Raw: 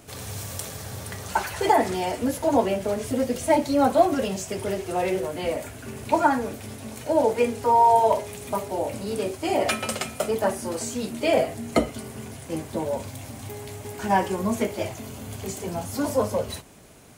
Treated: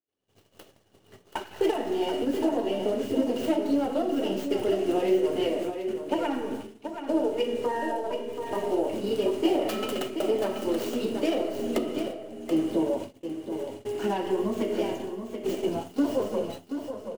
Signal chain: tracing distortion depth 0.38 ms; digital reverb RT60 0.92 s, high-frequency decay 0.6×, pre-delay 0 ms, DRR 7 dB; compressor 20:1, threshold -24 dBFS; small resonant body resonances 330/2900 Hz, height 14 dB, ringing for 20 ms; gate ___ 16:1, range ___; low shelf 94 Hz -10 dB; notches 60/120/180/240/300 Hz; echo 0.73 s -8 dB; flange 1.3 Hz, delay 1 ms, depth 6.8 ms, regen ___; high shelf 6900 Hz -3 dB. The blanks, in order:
-26 dBFS, -49 dB, -63%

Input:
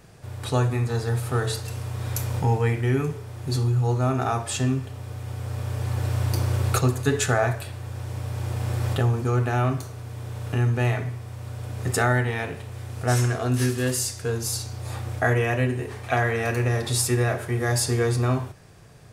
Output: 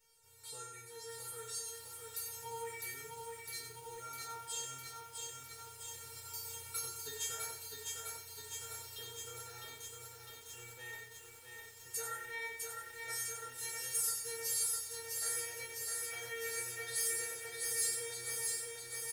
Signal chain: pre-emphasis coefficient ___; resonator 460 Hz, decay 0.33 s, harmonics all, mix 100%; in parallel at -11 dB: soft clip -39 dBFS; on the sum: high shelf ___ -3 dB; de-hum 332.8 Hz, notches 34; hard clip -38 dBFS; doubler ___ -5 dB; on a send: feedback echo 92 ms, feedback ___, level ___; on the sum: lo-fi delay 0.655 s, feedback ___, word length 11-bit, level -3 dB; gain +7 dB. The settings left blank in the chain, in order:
0.9, 8700 Hz, 14 ms, 34%, -7 dB, 80%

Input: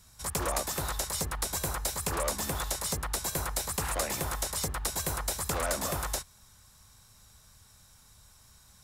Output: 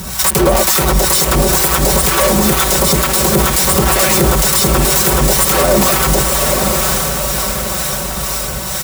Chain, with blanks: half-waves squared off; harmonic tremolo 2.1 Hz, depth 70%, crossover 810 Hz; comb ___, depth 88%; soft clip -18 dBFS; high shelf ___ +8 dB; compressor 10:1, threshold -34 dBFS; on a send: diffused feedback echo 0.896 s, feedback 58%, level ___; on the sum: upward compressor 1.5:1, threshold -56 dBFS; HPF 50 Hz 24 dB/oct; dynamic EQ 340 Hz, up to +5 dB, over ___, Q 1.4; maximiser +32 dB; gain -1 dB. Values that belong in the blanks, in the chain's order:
5.3 ms, 9800 Hz, -9 dB, -54 dBFS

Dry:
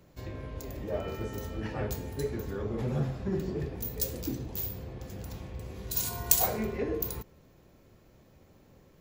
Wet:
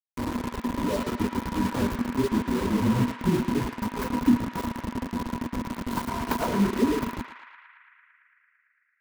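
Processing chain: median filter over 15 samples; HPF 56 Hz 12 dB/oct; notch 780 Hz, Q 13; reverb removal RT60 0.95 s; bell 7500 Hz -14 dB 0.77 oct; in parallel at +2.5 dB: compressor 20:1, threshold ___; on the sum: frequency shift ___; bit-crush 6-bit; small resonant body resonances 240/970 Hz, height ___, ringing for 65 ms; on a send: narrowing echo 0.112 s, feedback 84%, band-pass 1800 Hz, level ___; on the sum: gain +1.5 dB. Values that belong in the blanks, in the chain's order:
-46 dBFS, -20 Hz, 18 dB, -6 dB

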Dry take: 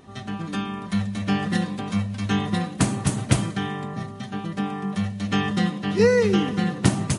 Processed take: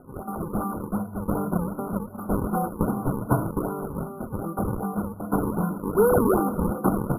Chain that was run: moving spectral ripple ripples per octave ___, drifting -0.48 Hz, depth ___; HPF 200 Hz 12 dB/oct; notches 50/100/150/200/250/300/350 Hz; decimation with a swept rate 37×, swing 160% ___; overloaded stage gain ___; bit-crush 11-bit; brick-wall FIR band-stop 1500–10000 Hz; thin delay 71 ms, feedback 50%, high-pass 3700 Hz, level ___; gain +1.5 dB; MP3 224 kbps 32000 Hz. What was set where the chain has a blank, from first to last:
1.7, 13 dB, 2.6 Hz, 13 dB, -13.5 dB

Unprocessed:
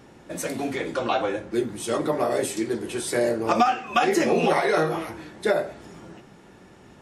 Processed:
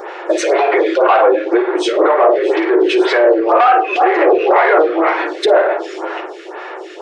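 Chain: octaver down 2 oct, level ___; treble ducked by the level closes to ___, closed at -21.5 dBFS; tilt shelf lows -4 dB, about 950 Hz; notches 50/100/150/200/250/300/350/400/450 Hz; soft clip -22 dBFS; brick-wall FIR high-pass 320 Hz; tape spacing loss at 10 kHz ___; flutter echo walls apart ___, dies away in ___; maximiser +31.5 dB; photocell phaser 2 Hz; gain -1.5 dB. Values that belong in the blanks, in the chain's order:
-2 dB, 1900 Hz, 29 dB, 9.4 m, 0.31 s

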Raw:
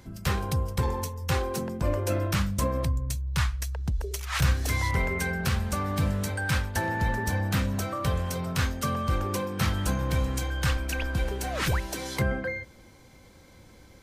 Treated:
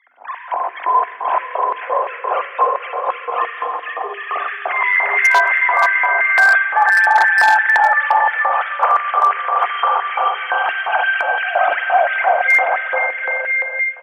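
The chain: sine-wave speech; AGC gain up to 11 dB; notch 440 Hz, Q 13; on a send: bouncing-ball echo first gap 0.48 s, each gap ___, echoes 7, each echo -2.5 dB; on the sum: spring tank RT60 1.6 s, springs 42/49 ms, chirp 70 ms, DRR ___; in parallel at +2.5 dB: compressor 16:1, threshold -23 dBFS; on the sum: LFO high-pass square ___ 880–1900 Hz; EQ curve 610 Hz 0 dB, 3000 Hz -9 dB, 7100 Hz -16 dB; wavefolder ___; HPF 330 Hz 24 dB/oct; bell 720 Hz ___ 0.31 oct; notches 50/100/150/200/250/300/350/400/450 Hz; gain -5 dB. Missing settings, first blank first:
0.65×, 2.5 dB, 2.9 Hz, -1 dBFS, +9 dB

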